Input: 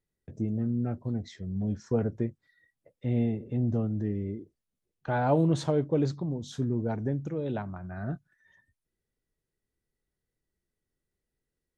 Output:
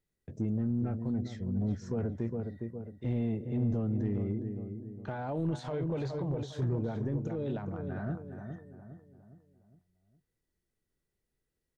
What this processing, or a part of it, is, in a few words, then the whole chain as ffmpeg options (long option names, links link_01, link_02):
de-esser from a sidechain: -filter_complex "[0:a]asettb=1/sr,asplit=3[link_01][link_02][link_03];[link_01]atrim=end=5.594[link_04];[link_02]atrim=start=5.59:end=6.79,asetpts=PTS-STARTPTS,afade=type=in:duration=0.004:curve=qsin,afade=type=out:start_time=1.196:duration=0.004:curve=qsin,equalizer=frequency=125:width_type=o:width=1:gain=4,equalizer=frequency=250:width_type=o:width=1:gain=-9,equalizer=frequency=500:width_type=o:width=1:gain=4,equalizer=frequency=1000:width_type=o:width=1:gain=6,equalizer=frequency=2000:width_type=o:width=1:gain=7,equalizer=frequency=4000:width_type=o:width=1:gain=5[link_05];[link_03]atrim=start=6.786[link_06];[link_04][link_05]acrossfade=duration=0.004:curve1=hsin:curve2=qsin[link_07];[link_07][link_06]acrossfade=duration=0.004:curve1=qsin:curve2=hsin,asplit=2[link_08][link_09];[link_09]adelay=410,lowpass=frequency=1200:poles=1,volume=-8.5dB,asplit=2[link_10][link_11];[link_11]adelay=410,lowpass=frequency=1200:poles=1,volume=0.46,asplit=2[link_12][link_13];[link_13]adelay=410,lowpass=frequency=1200:poles=1,volume=0.46,asplit=2[link_14][link_15];[link_15]adelay=410,lowpass=frequency=1200:poles=1,volume=0.46,asplit=2[link_16][link_17];[link_17]adelay=410,lowpass=frequency=1200:poles=1,volume=0.46[link_18];[link_08][link_10][link_12][link_14][link_16][link_18]amix=inputs=6:normalize=0,asplit=2[link_19][link_20];[link_20]highpass=frequency=5600:poles=1,apad=whole_len=609796[link_21];[link_19][link_21]sidechaincompress=threshold=-54dB:ratio=4:attack=1.3:release=25"